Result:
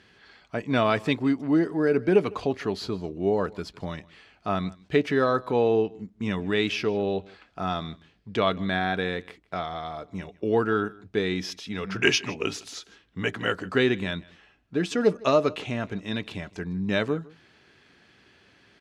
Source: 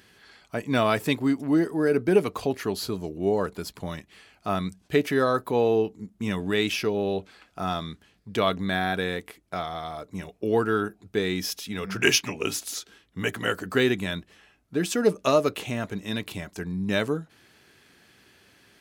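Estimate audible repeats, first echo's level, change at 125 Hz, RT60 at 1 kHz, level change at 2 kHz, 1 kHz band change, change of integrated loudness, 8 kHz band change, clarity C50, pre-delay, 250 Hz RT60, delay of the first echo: 1, -23.0 dB, 0.0 dB, none, 0.0 dB, 0.0 dB, 0.0 dB, -7.0 dB, none, none, none, 0.157 s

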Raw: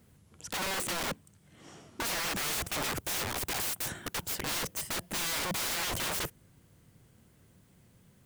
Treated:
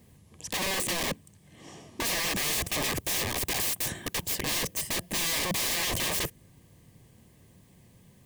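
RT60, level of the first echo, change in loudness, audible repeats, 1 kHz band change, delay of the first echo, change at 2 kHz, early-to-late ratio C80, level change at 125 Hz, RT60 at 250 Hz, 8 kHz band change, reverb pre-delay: none, none, +4.0 dB, none, +1.0 dB, none, +3.5 dB, none, +4.5 dB, none, +4.5 dB, none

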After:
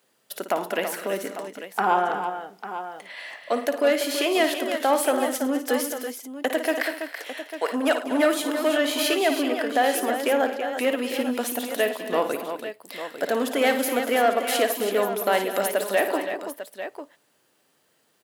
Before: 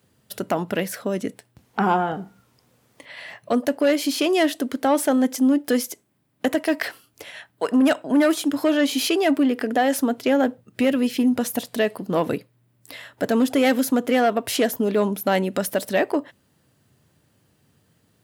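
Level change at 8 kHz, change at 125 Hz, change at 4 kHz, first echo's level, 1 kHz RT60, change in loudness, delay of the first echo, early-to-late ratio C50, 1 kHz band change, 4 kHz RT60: 0.0 dB, under -10 dB, +0.5 dB, -9.5 dB, none, -2.5 dB, 56 ms, none, +1.0 dB, none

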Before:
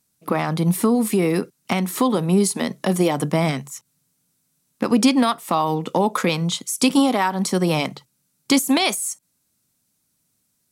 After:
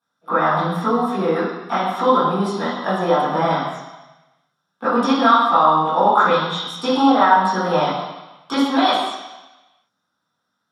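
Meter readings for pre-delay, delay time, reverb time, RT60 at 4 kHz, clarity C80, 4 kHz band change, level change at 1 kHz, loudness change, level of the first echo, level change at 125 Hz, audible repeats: 3 ms, none, 1.1 s, 1.2 s, 3.0 dB, +0.5 dB, +9.0 dB, +2.5 dB, none, -5.0 dB, none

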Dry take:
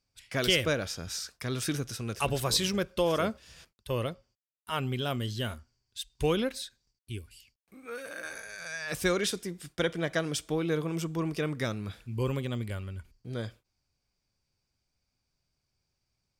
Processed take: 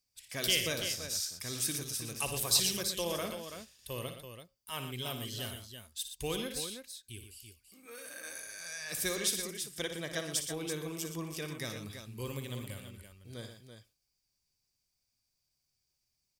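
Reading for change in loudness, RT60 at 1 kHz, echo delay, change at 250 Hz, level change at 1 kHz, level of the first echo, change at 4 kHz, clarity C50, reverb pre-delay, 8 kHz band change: -3.5 dB, none, 58 ms, -9.0 dB, -8.5 dB, -9.5 dB, -1.0 dB, none, none, +4.0 dB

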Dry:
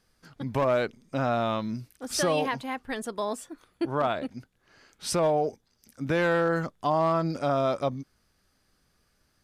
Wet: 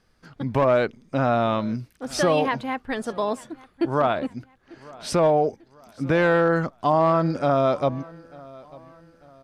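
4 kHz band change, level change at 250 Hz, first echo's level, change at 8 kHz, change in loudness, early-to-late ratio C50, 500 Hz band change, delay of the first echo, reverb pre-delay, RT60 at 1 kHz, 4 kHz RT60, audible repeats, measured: +1.5 dB, +5.5 dB, -22.5 dB, -2.0 dB, +5.0 dB, none, +5.5 dB, 0.894 s, none, none, none, 2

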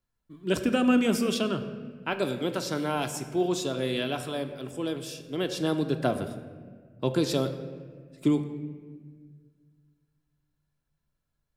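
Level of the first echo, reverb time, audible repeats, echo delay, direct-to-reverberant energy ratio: none, 1.7 s, none, none, 6.5 dB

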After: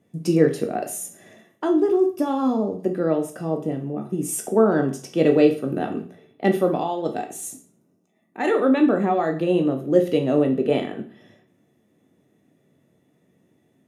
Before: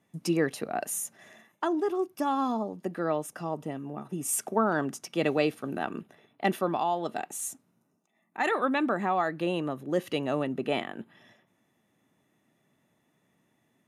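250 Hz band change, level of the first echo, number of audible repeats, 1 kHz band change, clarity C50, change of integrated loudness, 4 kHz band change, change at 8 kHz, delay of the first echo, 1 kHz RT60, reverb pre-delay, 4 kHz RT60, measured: +10.0 dB, none, none, +2.0 dB, 10.5 dB, +8.5 dB, +1.5 dB, +1.5 dB, none, 0.45 s, 11 ms, 0.40 s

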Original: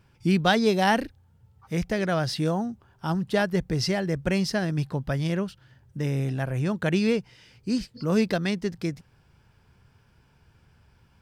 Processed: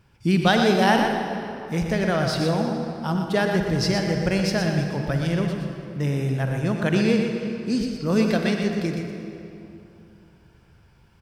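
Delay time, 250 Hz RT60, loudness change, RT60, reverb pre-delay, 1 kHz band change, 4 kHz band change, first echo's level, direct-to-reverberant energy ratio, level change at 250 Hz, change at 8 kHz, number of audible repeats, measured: 0.12 s, 3.0 s, +3.0 dB, 2.9 s, 37 ms, +4.0 dB, +3.5 dB, -7.0 dB, 2.0 dB, +3.5 dB, +3.0 dB, 1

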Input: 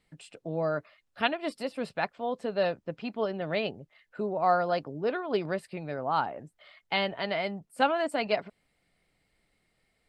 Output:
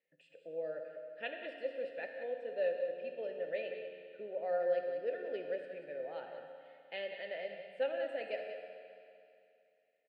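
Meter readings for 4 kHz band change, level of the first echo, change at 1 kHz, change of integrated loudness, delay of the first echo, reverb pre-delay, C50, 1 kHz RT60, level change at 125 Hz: -15.5 dB, -10.5 dB, -18.0 dB, -9.0 dB, 0.187 s, 11 ms, 3.5 dB, 2.6 s, under -25 dB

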